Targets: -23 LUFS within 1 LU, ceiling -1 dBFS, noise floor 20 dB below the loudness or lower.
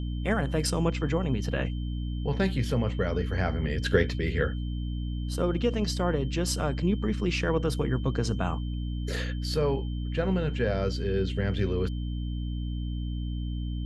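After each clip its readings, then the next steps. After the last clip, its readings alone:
hum 60 Hz; harmonics up to 300 Hz; hum level -29 dBFS; steady tone 3100 Hz; tone level -50 dBFS; loudness -29.0 LUFS; peak -9.0 dBFS; loudness target -23.0 LUFS
-> notches 60/120/180/240/300 Hz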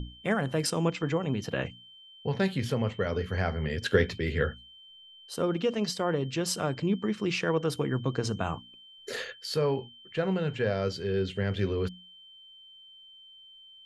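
hum none; steady tone 3100 Hz; tone level -50 dBFS
-> notch 3100 Hz, Q 30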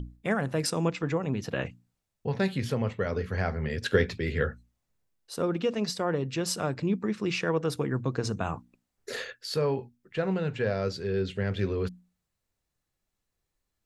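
steady tone none; loudness -30.0 LUFS; peak -10.0 dBFS; loudness target -23.0 LUFS
-> gain +7 dB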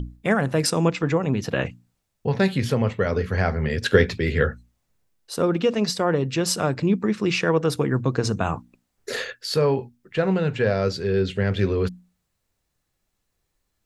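loudness -23.0 LUFS; peak -3.0 dBFS; noise floor -76 dBFS

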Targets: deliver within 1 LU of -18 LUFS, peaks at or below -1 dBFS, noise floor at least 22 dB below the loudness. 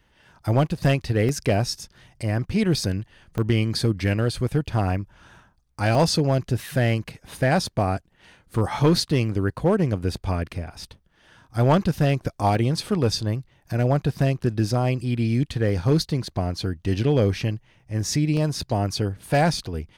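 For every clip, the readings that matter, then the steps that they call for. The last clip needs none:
clipped 0.5%; flat tops at -11.5 dBFS; dropouts 6; longest dropout 1.2 ms; loudness -23.5 LUFS; peak -11.5 dBFS; loudness target -18.0 LUFS
-> clip repair -11.5 dBFS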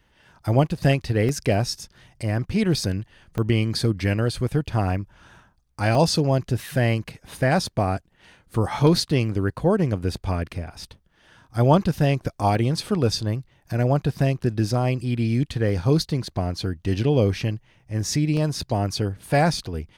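clipped 0.0%; dropouts 6; longest dropout 1.2 ms
-> interpolate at 1.29/3.38/5.95/12.55/15.69/18.37, 1.2 ms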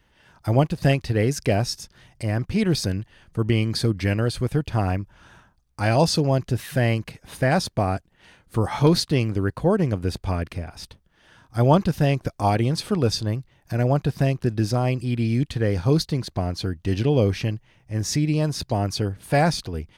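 dropouts 0; loudness -23.5 LUFS; peak -3.5 dBFS; loudness target -18.0 LUFS
-> gain +5.5 dB; limiter -1 dBFS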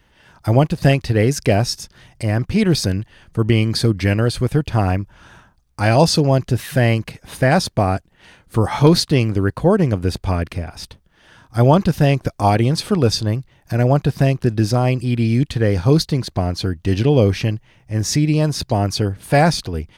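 loudness -18.0 LUFS; peak -1.0 dBFS; noise floor -57 dBFS

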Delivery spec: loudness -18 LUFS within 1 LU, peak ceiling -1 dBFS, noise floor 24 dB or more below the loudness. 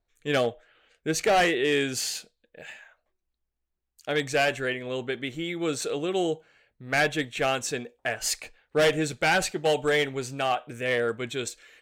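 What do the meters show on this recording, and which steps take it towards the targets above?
loudness -27.0 LUFS; peak -15.5 dBFS; loudness target -18.0 LUFS
-> gain +9 dB

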